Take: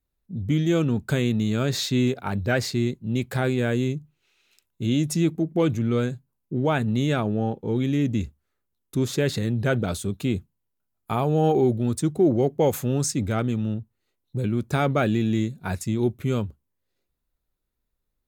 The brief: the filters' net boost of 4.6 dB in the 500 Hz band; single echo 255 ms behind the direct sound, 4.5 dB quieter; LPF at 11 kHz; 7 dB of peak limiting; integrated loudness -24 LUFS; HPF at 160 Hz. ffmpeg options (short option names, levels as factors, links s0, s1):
-af "highpass=160,lowpass=11000,equalizer=f=500:t=o:g=6,alimiter=limit=0.224:level=0:latency=1,aecho=1:1:255:0.596,volume=0.944"